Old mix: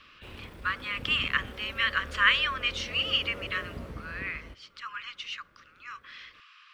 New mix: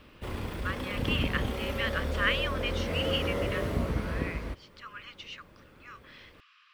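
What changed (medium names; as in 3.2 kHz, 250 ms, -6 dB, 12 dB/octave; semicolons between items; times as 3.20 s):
speech -6.0 dB; background +10.5 dB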